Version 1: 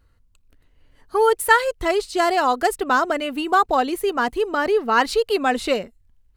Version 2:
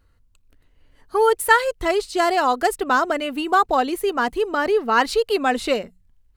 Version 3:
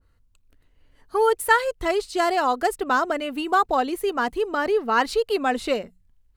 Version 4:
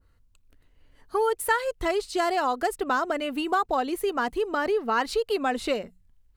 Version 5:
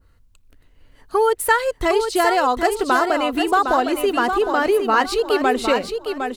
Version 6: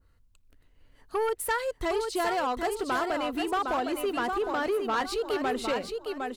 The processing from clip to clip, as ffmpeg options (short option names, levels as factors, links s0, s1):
-af "bandreject=f=60:t=h:w=6,bandreject=f=120:t=h:w=6,bandreject=f=180:t=h:w=6"
-af "adynamicequalizer=threshold=0.0355:dfrequency=1600:dqfactor=0.7:tfrequency=1600:tqfactor=0.7:attack=5:release=100:ratio=0.375:range=1.5:mode=cutabove:tftype=highshelf,volume=0.75"
-af "acompressor=threshold=0.0631:ratio=2"
-af "aecho=1:1:759|1518|2277|3036:0.473|0.137|0.0398|0.0115,volume=2.24"
-af "asoftclip=type=tanh:threshold=0.2,volume=0.398"